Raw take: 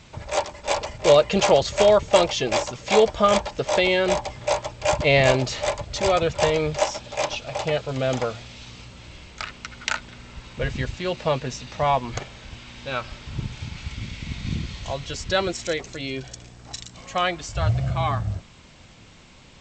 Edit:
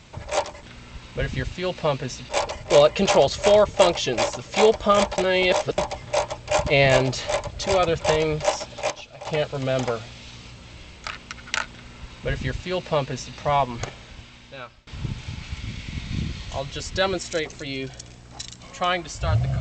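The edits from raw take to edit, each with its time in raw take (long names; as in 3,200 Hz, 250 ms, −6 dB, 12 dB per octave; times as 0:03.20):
0:03.52–0:04.12: reverse
0:07.24–0:07.61: clip gain −9.5 dB
0:10.05–0:11.71: duplicate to 0:00.63
0:12.27–0:13.21: fade out, to −23.5 dB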